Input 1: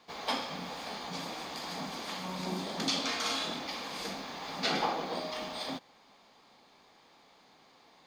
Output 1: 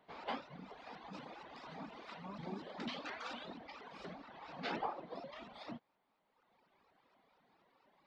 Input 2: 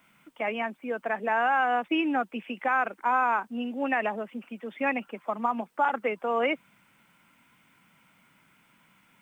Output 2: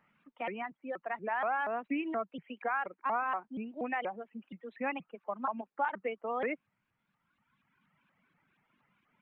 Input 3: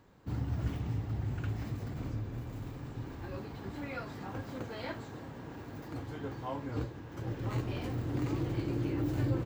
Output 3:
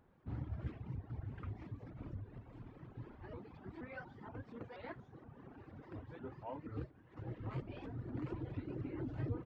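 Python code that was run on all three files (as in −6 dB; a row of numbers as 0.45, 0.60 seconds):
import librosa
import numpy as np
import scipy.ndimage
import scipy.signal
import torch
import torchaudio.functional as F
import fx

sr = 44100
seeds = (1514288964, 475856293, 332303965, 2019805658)

y = fx.dereverb_blind(x, sr, rt60_s=1.7)
y = scipy.signal.sosfilt(scipy.signal.butter(2, 2400.0, 'lowpass', fs=sr, output='sos'), y)
y = fx.vibrato_shape(y, sr, shape='saw_up', rate_hz=4.2, depth_cents=250.0)
y = y * librosa.db_to_amplitude(-6.5)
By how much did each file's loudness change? −12.0, −8.0, −9.5 LU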